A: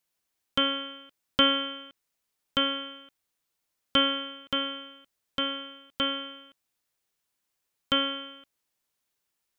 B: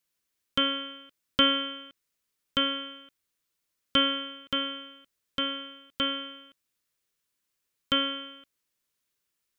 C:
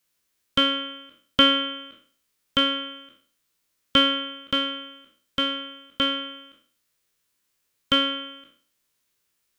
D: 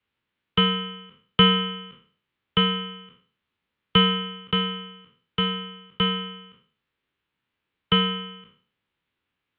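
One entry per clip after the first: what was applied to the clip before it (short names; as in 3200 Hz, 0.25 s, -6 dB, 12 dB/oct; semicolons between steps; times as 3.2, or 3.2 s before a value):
bell 780 Hz -8.5 dB 0.51 oct
spectral trails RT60 0.47 s; gain +5 dB
low shelf 200 Hz +11.5 dB; mistuned SSB -87 Hz 160–3500 Hz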